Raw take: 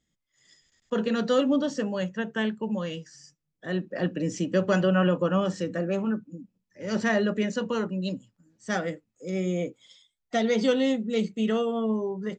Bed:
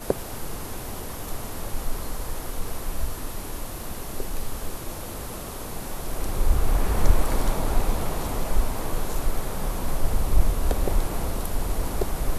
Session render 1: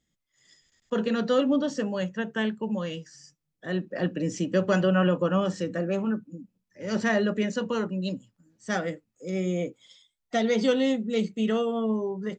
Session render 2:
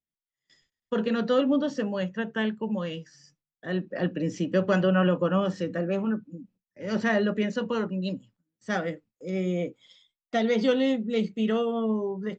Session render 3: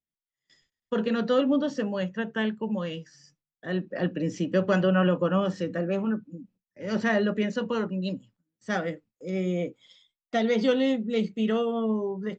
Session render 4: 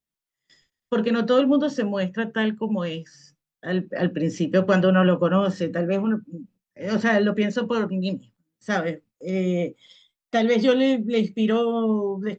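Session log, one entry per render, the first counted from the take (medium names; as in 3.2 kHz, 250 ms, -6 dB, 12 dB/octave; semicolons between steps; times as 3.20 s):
1.15–1.68 s: distance through air 57 m
gate with hold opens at -49 dBFS; low-pass 4.7 kHz 12 dB/octave
no audible change
trim +4.5 dB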